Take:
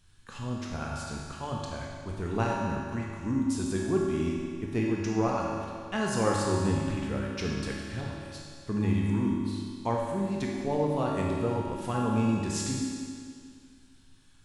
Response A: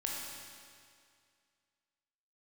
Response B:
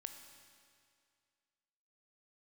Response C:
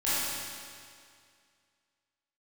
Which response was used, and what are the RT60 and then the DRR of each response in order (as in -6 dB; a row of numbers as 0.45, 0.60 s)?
A; 2.2, 2.2, 2.2 s; -3.0, 6.0, -13.0 dB